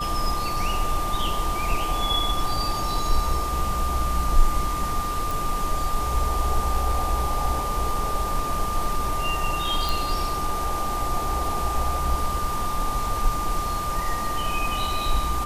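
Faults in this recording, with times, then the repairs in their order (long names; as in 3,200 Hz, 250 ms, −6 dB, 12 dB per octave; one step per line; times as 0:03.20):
whistle 1,200 Hz −27 dBFS
0:05.31: click
0:09.89: click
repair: click removal
notch filter 1,200 Hz, Q 30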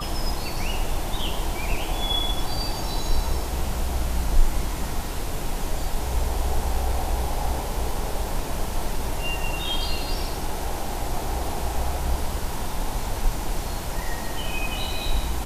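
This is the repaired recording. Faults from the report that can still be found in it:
none of them is left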